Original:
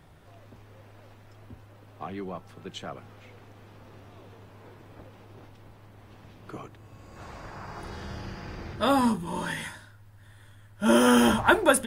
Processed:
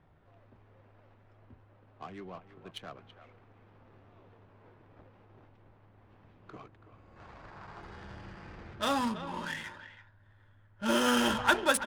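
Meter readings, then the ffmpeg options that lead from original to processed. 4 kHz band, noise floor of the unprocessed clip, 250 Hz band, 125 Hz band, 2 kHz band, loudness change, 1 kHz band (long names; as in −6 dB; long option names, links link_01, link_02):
−1.5 dB, −53 dBFS, −9.0 dB, −9.5 dB, −4.0 dB, −5.0 dB, −5.5 dB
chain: -filter_complex "[0:a]adynamicsmooth=sensitivity=7:basefreq=1400,tiltshelf=frequency=1400:gain=-5,asplit=2[link_01][link_02];[link_02]adelay=330,highpass=300,lowpass=3400,asoftclip=type=hard:threshold=-12dB,volume=-12dB[link_03];[link_01][link_03]amix=inputs=2:normalize=0,volume=-4.5dB"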